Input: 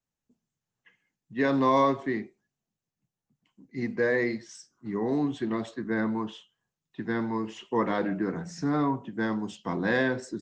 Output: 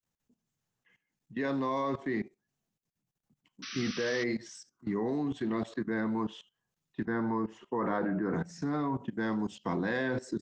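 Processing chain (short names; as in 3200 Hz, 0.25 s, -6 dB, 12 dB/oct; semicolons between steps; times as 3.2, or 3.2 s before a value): level quantiser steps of 18 dB; 3.62–4.24 painted sound noise 1100–6100 Hz -47 dBFS; 7.05–8.34 resonant high shelf 2000 Hz -8.5 dB, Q 1.5; gain +5 dB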